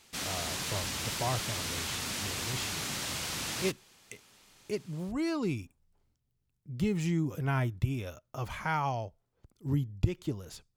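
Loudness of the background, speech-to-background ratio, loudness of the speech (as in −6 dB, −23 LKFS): −34.0 LKFS, −1.0 dB, −35.0 LKFS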